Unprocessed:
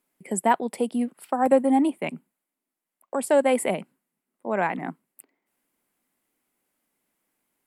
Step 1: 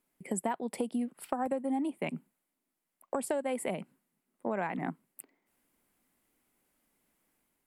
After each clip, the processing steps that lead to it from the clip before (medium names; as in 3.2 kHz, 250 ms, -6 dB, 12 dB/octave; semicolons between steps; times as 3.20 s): level rider gain up to 4 dB; bass shelf 110 Hz +11 dB; compression 8:1, threshold -26 dBFS, peak gain reduction 16.5 dB; trim -3.5 dB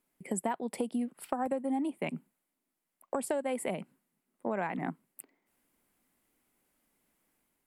no audible change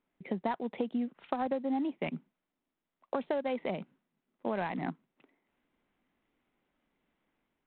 IMA ADPCM 32 kbps 8 kHz